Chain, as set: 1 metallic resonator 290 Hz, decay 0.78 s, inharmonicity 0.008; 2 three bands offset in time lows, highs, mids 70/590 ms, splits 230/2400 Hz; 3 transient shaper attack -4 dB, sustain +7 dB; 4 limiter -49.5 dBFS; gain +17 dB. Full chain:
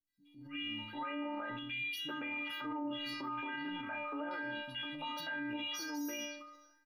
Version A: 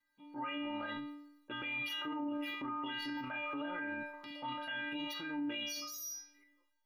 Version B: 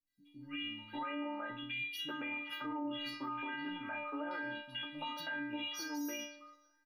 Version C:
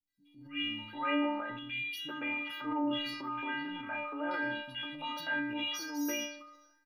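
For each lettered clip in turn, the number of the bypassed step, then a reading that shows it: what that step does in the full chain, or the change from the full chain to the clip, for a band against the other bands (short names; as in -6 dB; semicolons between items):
2, momentary loudness spread change +4 LU; 3, momentary loudness spread change +1 LU; 4, mean gain reduction 2.5 dB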